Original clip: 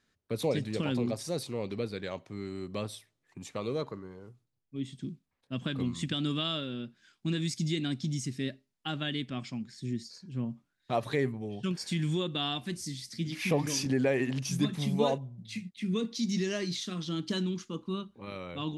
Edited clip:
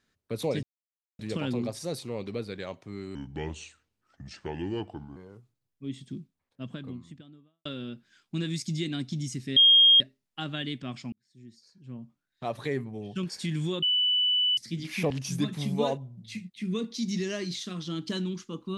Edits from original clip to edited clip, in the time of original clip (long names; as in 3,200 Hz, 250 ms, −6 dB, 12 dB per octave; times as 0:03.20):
0:00.63: splice in silence 0.56 s
0:02.59–0:04.08: play speed 74%
0:04.94–0:06.57: fade out and dull
0:08.48: insert tone 3,240 Hz −14 dBFS 0.44 s
0:09.60–0:11.53: fade in
0:12.30–0:13.05: beep over 2,980 Hz −21.5 dBFS
0:13.58–0:14.31: remove